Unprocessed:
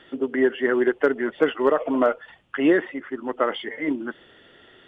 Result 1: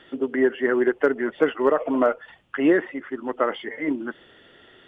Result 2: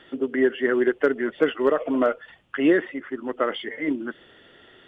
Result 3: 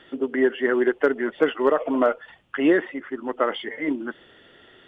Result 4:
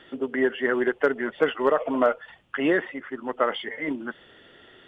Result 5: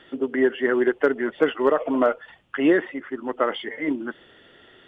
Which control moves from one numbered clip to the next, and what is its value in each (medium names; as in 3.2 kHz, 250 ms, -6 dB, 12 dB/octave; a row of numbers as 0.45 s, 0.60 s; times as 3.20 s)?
dynamic bell, frequency: 3.5 kHz, 880 Hz, 110 Hz, 320 Hz, 9.1 kHz